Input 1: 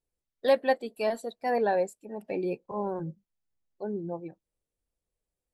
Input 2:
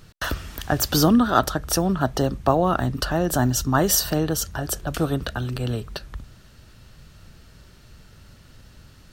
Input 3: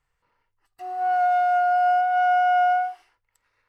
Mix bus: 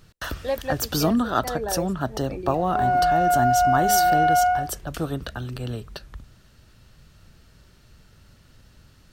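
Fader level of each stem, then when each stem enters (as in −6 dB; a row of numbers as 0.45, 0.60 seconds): −3.5, −4.5, +0.5 decibels; 0.00, 0.00, 1.75 seconds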